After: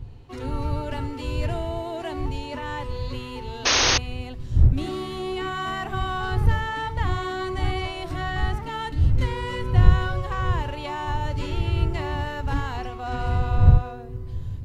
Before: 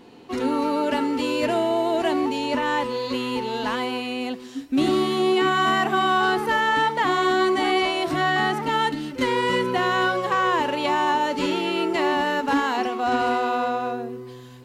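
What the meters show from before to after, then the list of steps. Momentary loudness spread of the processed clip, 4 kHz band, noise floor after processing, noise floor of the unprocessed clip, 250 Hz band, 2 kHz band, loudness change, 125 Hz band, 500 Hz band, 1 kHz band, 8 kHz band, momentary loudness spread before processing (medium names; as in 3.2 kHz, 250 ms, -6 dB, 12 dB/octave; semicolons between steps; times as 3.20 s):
13 LU, -2.0 dB, -35 dBFS, -40 dBFS, -8.5 dB, -6.5 dB, -3.0 dB, +15.5 dB, -9.0 dB, -8.5 dB, +8.5 dB, 7 LU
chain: wind noise 110 Hz -25 dBFS; resonant low shelf 150 Hz +9 dB, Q 1.5; painted sound noise, 3.65–3.98 s, 260–6600 Hz -11 dBFS; trim -8.5 dB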